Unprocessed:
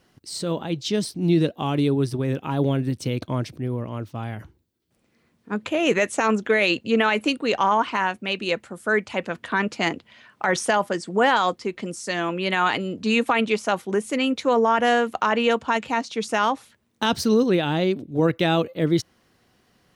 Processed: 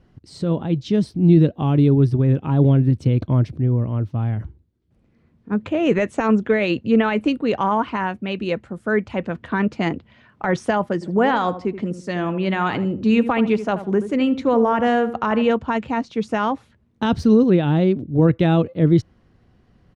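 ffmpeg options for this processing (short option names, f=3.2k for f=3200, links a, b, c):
-filter_complex "[0:a]asplit=3[a][b][c];[a]afade=t=out:st=11.01:d=0.02[d];[b]asplit=2[e][f];[f]adelay=78,lowpass=f=1.3k:p=1,volume=-11dB,asplit=2[g][h];[h]adelay=78,lowpass=f=1.3k:p=1,volume=0.33,asplit=2[i][j];[j]adelay=78,lowpass=f=1.3k:p=1,volume=0.33,asplit=2[k][l];[l]adelay=78,lowpass=f=1.3k:p=1,volume=0.33[m];[e][g][i][k][m]amix=inputs=5:normalize=0,afade=t=in:st=11.01:d=0.02,afade=t=out:st=15.51:d=0.02[n];[c]afade=t=in:st=15.51:d=0.02[o];[d][n][o]amix=inputs=3:normalize=0,aemphasis=mode=reproduction:type=riaa,volume=-1dB"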